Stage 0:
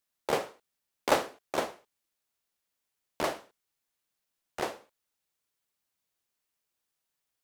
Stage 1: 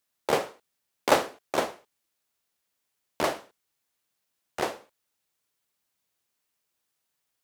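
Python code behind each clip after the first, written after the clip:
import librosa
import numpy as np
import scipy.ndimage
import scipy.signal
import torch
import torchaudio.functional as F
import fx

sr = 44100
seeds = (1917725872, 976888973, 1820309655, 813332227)

y = scipy.signal.sosfilt(scipy.signal.butter(2, 49.0, 'highpass', fs=sr, output='sos'), x)
y = y * 10.0 ** (4.0 / 20.0)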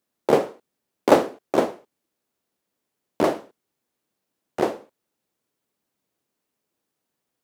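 y = fx.peak_eq(x, sr, hz=280.0, db=14.5, octaves=3.0)
y = y * 10.0 ** (-3.0 / 20.0)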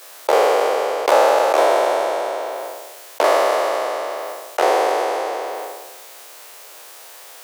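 y = fx.spec_trails(x, sr, decay_s=1.24)
y = scipy.signal.sosfilt(scipy.signal.butter(4, 530.0, 'highpass', fs=sr, output='sos'), y)
y = fx.env_flatten(y, sr, amount_pct=70)
y = y * 10.0 ** (-1.5 / 20.0)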